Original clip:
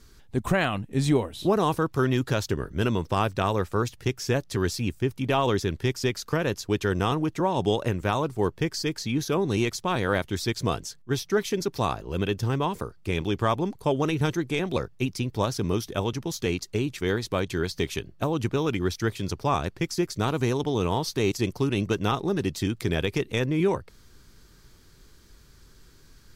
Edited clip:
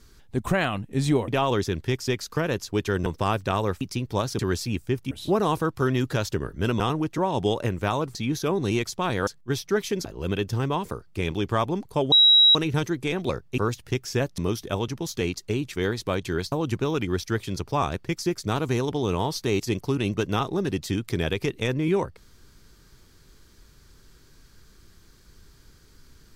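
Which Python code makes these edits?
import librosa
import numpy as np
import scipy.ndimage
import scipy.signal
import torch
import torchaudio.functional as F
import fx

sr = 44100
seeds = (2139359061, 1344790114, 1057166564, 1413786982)

y = fx.edit(x, sr, fx.swap(start_s=1.28, length_s=1.69, other_s=5.24, other_length_s=1.78),
    fx.swap(start_s=3.72, length_s=0.8, other_s=15.05, other_length_s=0.58),
    fx.cut(start_s=8.37, length_s=0.64),
    fx.cut(start_s=10.13, length_s=0.75),
    fx.cut(start_s=11.66, length_s=0.29),
    fx.insert_tone(at_s=14.02, length_s=0.43, hz=3860.0, db=-12.0),
    fx.cut(start_s=17.77, length_s=0.47), tone=tone)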